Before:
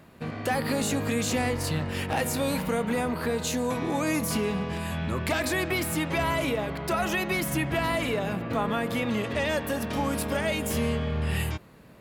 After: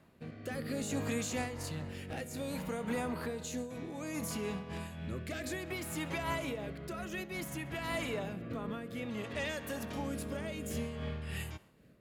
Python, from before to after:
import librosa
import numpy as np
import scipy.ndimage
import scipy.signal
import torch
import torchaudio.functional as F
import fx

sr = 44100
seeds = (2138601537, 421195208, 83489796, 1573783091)

p1 = fx.rotary(x, sr, hz=0.6)
p2 = fx.dynamic_eq(p1, sr, hz=6800.0, q=6.2, threshold_db=-59.0, ratio=4.0, max_db=6)
p3 = p2 + fx.echo_thinned(p2, sr, ms=66, feedback_pct=61, hz=420.0, wet_db=-22, dry=0)
p4 = fx.am_noise(p3, sr, seeds[0], hz=5.7, depth_pct=65)
y = p4 * 10.0 ** (-6.0 / 20.0)